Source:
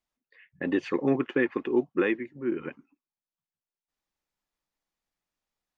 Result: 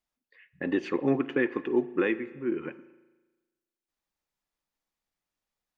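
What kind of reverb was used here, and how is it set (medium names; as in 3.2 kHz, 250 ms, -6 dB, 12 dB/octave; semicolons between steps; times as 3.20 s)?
spring tank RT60 1.2 s, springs 36 ms, chirp 45 ms, DRR 15 dB; trim -1 dB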